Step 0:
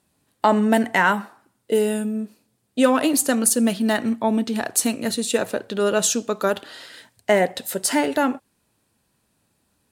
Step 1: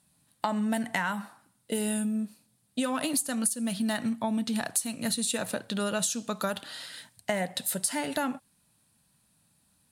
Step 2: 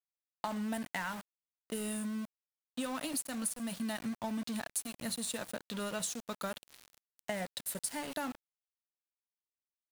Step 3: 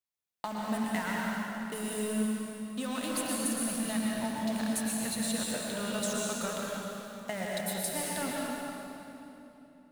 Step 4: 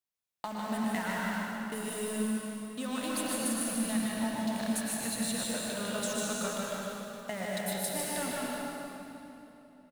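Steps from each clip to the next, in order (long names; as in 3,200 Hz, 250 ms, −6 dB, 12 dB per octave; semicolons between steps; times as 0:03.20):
graphic EQ with 15 bands 160 Hz +7 dB, 400 Hz −10 dB, 4,000 Hz +4 dB, 10,000 Hz +9 dB; downward compressor 10 to 1, threshold −22 dBFS, peak gain reduction 16.5 dB; level −3.5 dB
centre clipping without the shift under −33.5 dBFS; level −8 dB
convolution reverb RT60 3.2 s, pre-delay 106 ms, DRR −4 dB
single-tap delay 152 ms −4 dB; level −1.5 dB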